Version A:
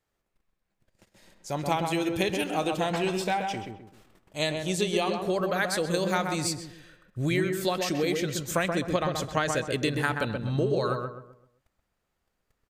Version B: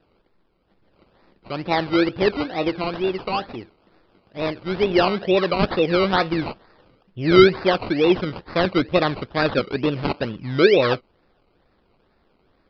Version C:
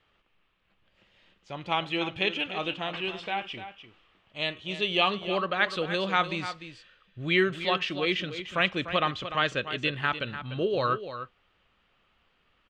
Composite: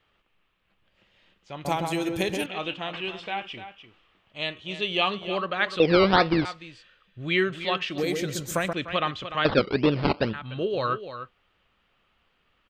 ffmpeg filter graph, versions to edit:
-filter_complex "[0:a]asplit=2[a][b];[1:a]asplit=2[c][d];[2:a]asplit=5[e][f][g][h][i];[e]atrim=end=1.652[j];[a]atrim=start=1.648:end=2.462[k];[f]atrim=start=2.458:end=5.802[l];[c]atrim=start=5.798:end=6.452[m];[g]atrim=start=6.448:end=7.982[n];[b]atrim=start=7.978:end=8.732[o];[h]atrim=start=8.728:end=9.452[p];[d]atrim=start=9.448:end=10.332[q];[i]atrim=start=10.328[r];[j][k]acrossfade=d=0.004:c1=hsin:c2=hsin[s];[s][l]acrossfade=d=0.004:c1=hsin:c2=hsin[t];[t][m]acrossfade=d=0.004:c1=hsin:c2=hsin[u];[u][n]acrossfade=d=0.004:c1=hsin:c2=hsin[v];[v][o]acrossfade=d=0.004:c1=hsin:c2=hsin[w];[w][p]acrossfade=d=0.004:c1=hsin:c2=hsin[x];[x][q]acrossfade=d=0.004:c1=hsin:c2=hsin[y];[y][r]acrossfade=d=0.004:c1=hsin:c2=hsin"

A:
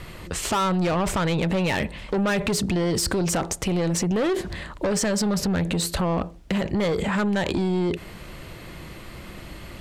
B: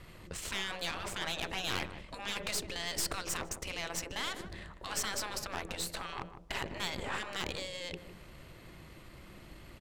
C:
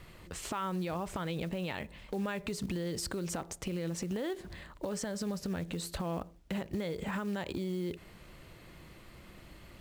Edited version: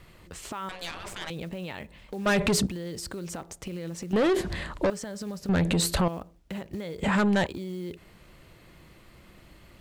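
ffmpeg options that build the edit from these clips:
-filter_complex "[0:a]asplit=4[a][b][c][d];[2:a]asplit=6[e][f][g][h][i][j];[e]atrim=end=0.692[k];[1:a]atrim=start=0.688:end=1.302[l];[f]atrim=start=1.298:end=2.262[m];[a]atrim=start=2.258:end=2.672[n];[g]atrim=start=2.668:end=4.132[o];[b]atrim=start=4.128:end=4.902[p];[h]atrim=start=4.898:end=5.492[q];[c]atrim=start=5.488:end=6.082[r];[i]atrim=start=6.078:end=7.032[s];[d]atrim=start=7.028:end=7.462[t];[j]atrim=start=7.458[u];[k][l]acrossfade=d=0.004:c1=hsin:c2=hsin[v];[v][m]acrossfade=d=0.004:c1=hsin:c2=hsin[w];[w][n]acrossfade=d=0.004:c1=hsin:c2=hsin[x];[x][o]acrossfade=d=0.004:c1=hsin:c2=hsin[y];[y][p]acrossfade=d=0.004:c1=hsin:c2=hsin[z];[z][q]acrossfade=d=0.004:c1=hsin:c2=hsin[aa];[aa][r]acrossfade=d=0.004:c1=hsin:c2=hsin[ab];[ab][s]acrossfade=d=0.004:c1=hsin:c2=hsin[ac];[ac][t]acrossfade=d=0.004:c1=hsin:c2=hsin[ad];[ad][u]acrossfade=d=0.004:c1=hsin:c2=hsin"

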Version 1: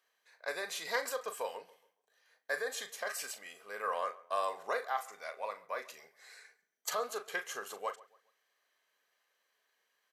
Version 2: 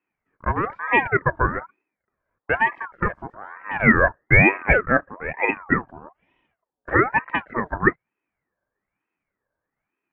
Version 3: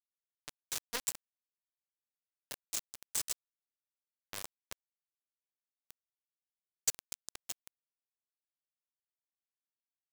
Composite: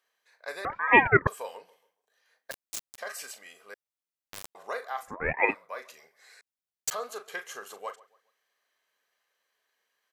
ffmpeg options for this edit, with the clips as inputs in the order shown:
-filter_complex "[1:a]asplit=2[a][b];[2:a]asplit=3[c][d][e];[0:a]asplit=6[f][g][h][i][j][k];[f]atrim=end=0.652[l];[a]atrim=start=0.648:end=1.272[m];[g]atrim=start=1.268:end=2.512[n];[c]atrim=start=2.508:end=2.982[o];[h]atrim=start=2.978:end=3.742[p];[d]atrim=start=3.738:end=4.552[q];[i]atrim=start=4.548:end=5.17[r];[b]atrim=start=5.01:end=5.57[s];[j]atrim=start=5.41:end=6.412[t];[e]atrim=start=6.408:end=6.912[u];[k]atrim=start=6.908[v];[l][m]acrossfade=d=0.004:c1=hsin:c2=hsin[w];[w][n]acrossfade=d=0.004:c1=hsin:c2=hsin[x];[x][o]acrossfade=d=0.004:c1=hsin:c2=hsin[y];[y][p]acrossfade=d=0.004:c1=hsin:c2=hsin[z];[z][q]acrossfade=d=0.004:c1=hsin:c2=hsin[aa];[aa][r]acrossfade=d=0.004:c1=hsin:c2=hsin[ab];[ab][s]acrossfade=d=0.16:c1=tri:c2=tri[ac];[ac][t]acrossfade=d=0.16:c1=tri:c2=tri[ad];[ad][u]acrossfade=d=0.004:c1=hsin:c2=hsin[ae];[ae][v]acrossfade=d=0.004:c1=hsin:c2=hsin"

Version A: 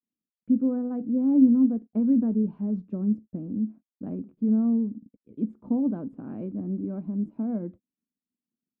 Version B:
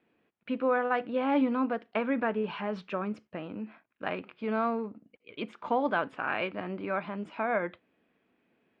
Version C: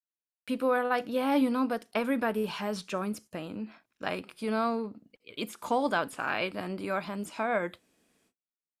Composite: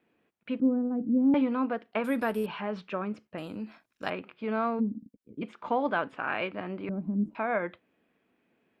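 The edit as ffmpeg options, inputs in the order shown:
-filter_complex "[0:a]asplit=3[a][b][c];[2:a]asplit=2[d][e];[1:a]asplit=6[f][g][h][i][j][k];[f]atrim=end=0.602[l];[a]atrim=start=0.598:end=1.342[m];[g]atrim=start=1.338:end=2.042[n];[d]atrim=start=2.038:end=2.462[o];[h]atrim=start=2.458:end=3.382[p];[e]atrim=start=3.378:end=4.102[q];[i]atrim=start=4.098:end=4.81[r];[b]atrim=start=4.79:end=5.43[s];[j]atrim=start=5.41:end=6.892[t];[c]atrim=start=6.888:end=7.352[u];[k]atrim=start=7.348[v];[l][m]acrossfade=d=0.004:c1=hsin:c2=hsin[w];[w][n]acrossfade=d=0.004:c1=hsin:c2=hsin[x];[x][o]acrossfade=d=0.004:c1=hsin:c2=hsin[y];[y][p]acrossfade=d=0.004:c1=hsin:c2=hsin[z];[z][q]acrossfade=d=0.004:c1=hsin:c2=hsin[aa];[aa][r]acrossfade=d=0.004:c1=hsin:c2=hsin[ab];[ab][s]acrossfade=d=0.02:c1=tri:c2=tri[ac];[ac][t]acrossfade=d=0.02:c1=tri:c2=tri[ad];[ad][u]acrossfade=d=0.004:c1=hsin:c2=hsin[ae];[ae][v]acrossfade=d=0.004:c1=hsin:c2=hsin"

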